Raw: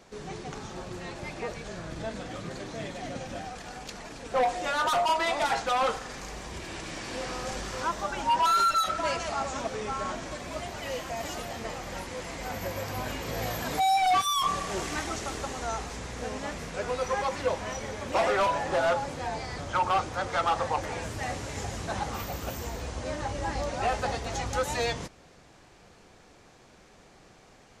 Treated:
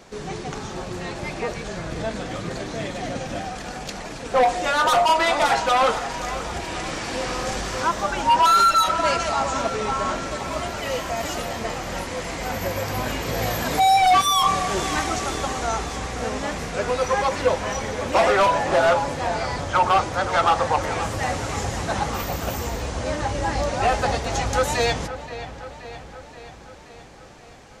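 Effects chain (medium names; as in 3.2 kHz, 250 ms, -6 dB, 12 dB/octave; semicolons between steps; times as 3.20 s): feedback echo behind a low-pass 526 ms, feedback 62%, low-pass 3.8 kHz, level -13 dB; trim +7.5 dB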